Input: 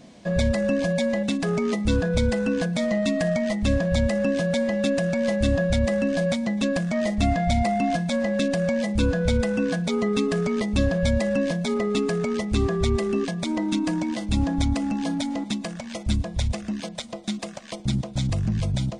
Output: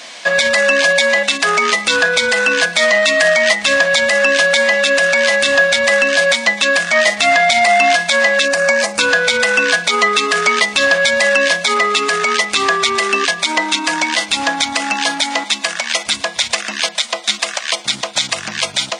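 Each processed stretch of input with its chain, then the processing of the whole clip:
8.45–9.01 s: high-pass 58 Hz + peaking EQ 3.3 kHz -12.5 dB 0.58 oct + band-stop 2 kHz, Q 14
whole clip: high-pass 1.4 kHz 12 dB/octave; treble shelf 7.9 kHz -8 dB; loudness maximiser +27 dB; trim -1 dB

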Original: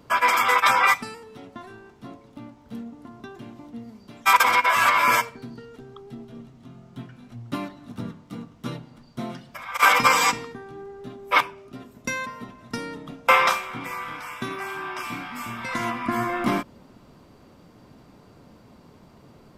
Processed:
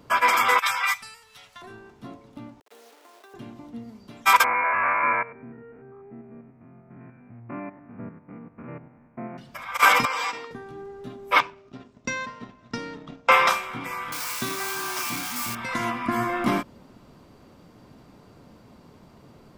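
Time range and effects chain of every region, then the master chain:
0.59–1.62 s: amplifier tone stack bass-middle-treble 10-0-10 + tape noise reduction on one side only encoder only
2.60–3.34 s: send-on-delta sampling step -45.5 dBFS + steep high-pass 400 Hz + compression 5:1, threshold -46 dBFS
4.44–9.38 s: spectrogram pixelated in time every 100 ms + rippled Chebyshev low-pass 2.5 kHz, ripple 3 dB + bass shelf 61 Hz -9 dB
10.05–10.51 s: three-band isolator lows -20 dB, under 350 Hz, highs -14 dB, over 5.9 kHz + band-stop 6.8 kHz, Q 21 + compression 5:1, threshold -24 dBFS
11.39–13.32 s: companding laws mixed up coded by A + low-pass 6.7 kHz 24 dB/octave
14.12–15.55 s: zero-crossing glitches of -24 dBFS + peaking EQ 5.2 kHz +4.5 dB 1 oct
whole clip: none

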